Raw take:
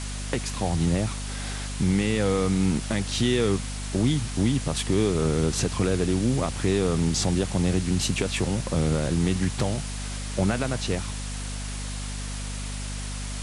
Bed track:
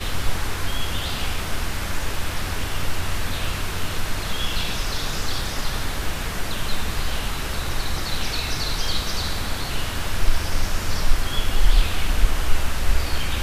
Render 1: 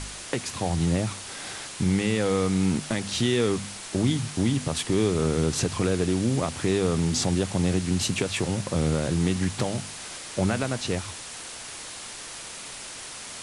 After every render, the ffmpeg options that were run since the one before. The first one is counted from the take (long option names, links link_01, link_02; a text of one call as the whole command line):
ffmpeg -i in.wav -af "bandreject=frequency=50:width_type=h:width=4,bandreject=frequency=100:width_type=h:width=4,bandreject=frequency=150:width_type=h:width=4,bandreject=frequency=200:width_type=h:width=4,bandreject=frequency=250:width_type=h:width=4" out.wav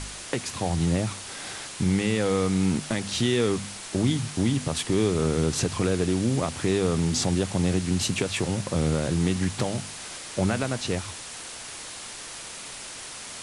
ffmpeg -i in.wav -af anull out.wav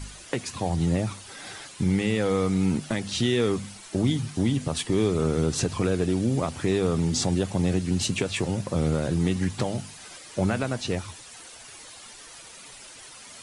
ffmpeg -i in.wav -af "afftdn=noise_reduction=10:noise_floor=-39" out.wav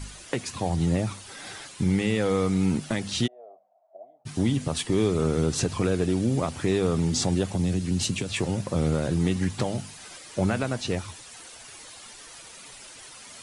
ffmpeg -i in.wav -filter_complex "[0:a]asplit=3[link_01][link_02][link_03];[link_01]afade=type=out:start_time=3.26:duration=0.02[link_04];[link_02]asuperpass=centerf=660:order=4:qfactor=5.9,afade=type=in:start_time=3.26:duration=0.02,afade=type=out:start_time=4.25:duration=0.02[link_05];[link_03]afade=type=in:start_time=4.25:duration=0.02[link_06];[link_04][link_05][link_06]amix=inputs=3:normalize=0,asettb=1/sr,asplit=3[link_07][link_08][link_09];[link_07]atrim=end=7.554[link_10];[link_08]atrim=start=7.55:end=8.33,asetpts=PTS-STARTPTS,afade=type=in:duration=0.004:curve=qsin,afade=type=out:start_time=0.776:duration=0.004:curve=qsin,acrossover=split=280|3000[link_11][link_12][link_13];[link_12]acompressor=threshold=-34dB:ratio=6:attack=3.2:release=140:knee=2.83:detection=peak[link_14];[link_11][link_14][link_13]amix=inputs=3:normalize=0[link_15];[link_09]atrim=start=8.326[link_16];[link_10][link_15]acrossfade=duration=0.004:curve1=hsin:curve2=qsin[link_17];[link_17][link_16]acrossfade=duration=0.004:curve1=qsin:curve2=hsin" out.wav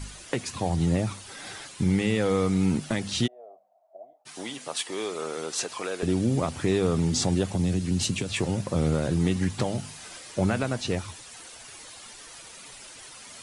ffmpeg -i in.wav -filter_complex "[0:a]asettb=1/sr,asplit=3[link_01][link_02][link_03];[link_01]atrim=end=4.134[link_04];[link_02]atrim=start=4.13:end=6.03,asetpts=PTS-STARTPTS,afade=type=in:duration=0.004:curve=qsin,afade=type=out:start_time=1.896:duration=0.004:curve=qsin,highpass=590[link_05];[link_03]atrim=start=6.026[link_06];[link_04][link_05]acrossfade=duration=0.004:curve1=hsin:curve2=qsin[link_07];[link_07][link_06]acrossfade=duration=0.004:curve1=qsin:curve2=hsin,asettb=1/sr,asplit=3[link_08][link_09][link_10];[link_08]atrim=end=9.804[link_11];[link_09]atrim=start=9.8:end=10.32,asetpts=PTS-STARTPTS,afade=type=in:duration=0.004:curve=qsin,afade=type=out:start_time=0.516:duration=0.004:curve=qsin,asplit=2[link_12][link_13];[link_13]adelay=27,volume=-6dB[link_14];[link_12][link_14]amix=inputs=2:normalize=0,atrim=end_sample=22932[link_15];[link_10]atrim=start=10.316[link_16];[link_11][link_15]acrossfade=duration=0.004:curve1=hsin:curve2=qsin[link_17];[link_17][link_16]acrossfade=duration=0.004:curve1=qsin:curve2=hsin" out.wav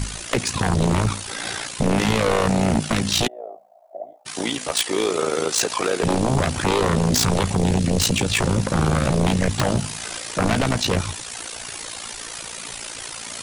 ffmpeg -i in.wav -af "aeval=exprs='0.251*sin(PI/2*3.55*val(0)/0.251)':channel_layout=same,tremolo=f=57:d=0.71" out.wav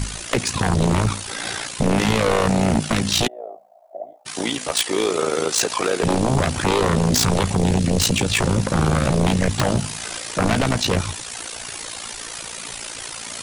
ffmpeg -i in.wav -af "volume=1dB" out.wav